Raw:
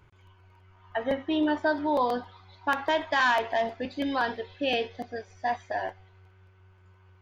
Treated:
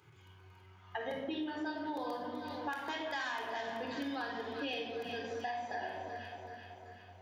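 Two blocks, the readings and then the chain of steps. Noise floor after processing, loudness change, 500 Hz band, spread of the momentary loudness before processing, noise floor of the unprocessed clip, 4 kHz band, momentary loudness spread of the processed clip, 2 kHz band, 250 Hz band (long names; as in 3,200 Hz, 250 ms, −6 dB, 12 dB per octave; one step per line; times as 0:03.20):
−59 dBFS, −11.0 dB, −11.0 dB, 11 LU, −58 dBFS, −8.5 dB, 14 LU, −10.5 dB, −10.0 dB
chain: high-pass filter 110 Hz 24 dB per octave
high-shelf EQ 3,000 Hz +8.5 dB
on a send: delay that swaps between a low-pass and a high-pass 190 ms, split 1,100 Hz, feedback 75%, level −11 dB
on the sum: rectangular room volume 2,600 cubic metres, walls furnished, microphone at 3.9 metres
downward compressor 6 to 1, threshold −31 dBFS, peak gain reduction 15 dB
level −5.5 dB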